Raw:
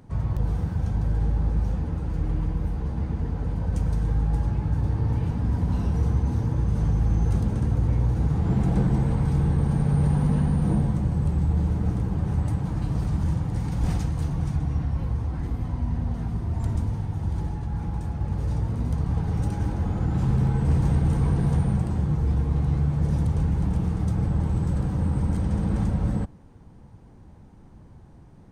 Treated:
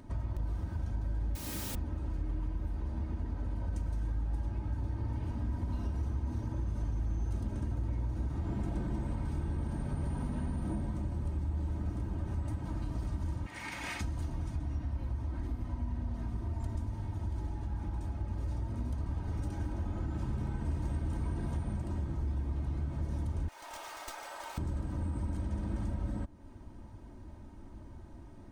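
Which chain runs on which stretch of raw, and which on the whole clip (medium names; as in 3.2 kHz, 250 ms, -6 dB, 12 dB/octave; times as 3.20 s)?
1.35–1.75 s: high-pass 140 Hz + word length cut 6-bit, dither triangular
13.46–14.01 s: high-pass 1 kHz 6 dB/octave + peaking EQ 2.2 kHz +14 dB 1.1 oct
23.48–24.58 s: high-pass 590 Hz 24 dB/octave + tilt EQ +3 dB/octave + sliding maximum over 3 samples
whole clip: comb 3.2 ms, depth 64%; compression 2.5:1, threshold -35 dBFS; trim -1.5 dB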